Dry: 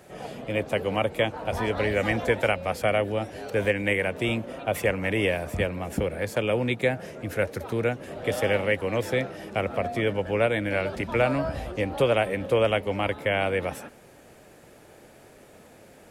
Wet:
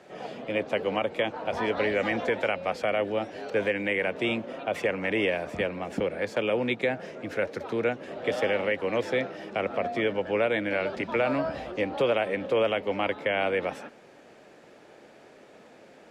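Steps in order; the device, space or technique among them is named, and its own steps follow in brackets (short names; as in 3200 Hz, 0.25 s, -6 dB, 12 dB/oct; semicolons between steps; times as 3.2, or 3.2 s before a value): DJ mixer with the lows and highs turned down (three-band isolator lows -16 dB, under 170 Hz, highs -21 dB, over 6300 Hz; limiter -15.5 dBFS, peak gain reduction 4.5 dB)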